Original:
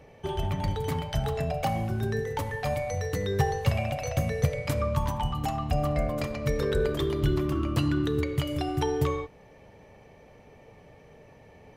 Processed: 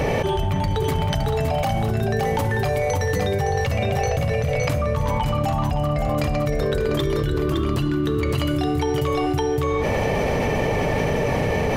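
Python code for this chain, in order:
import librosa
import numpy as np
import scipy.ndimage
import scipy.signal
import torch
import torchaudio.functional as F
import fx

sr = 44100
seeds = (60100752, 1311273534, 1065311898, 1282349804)

y = fx.high_shelf(x, sr, hz=6100.0, db=-5.0, at=(3.44, 5.9))
y = y + 10.0 ** (-4.5 / 20.0) * np.pad(y, (int(564 * sr / 1000.0), 0))[:len(y)]
y = fx.env_flatten(y, sr, amount_pct=100)
y = y * 10.0 ** (-2.5 / 20.0)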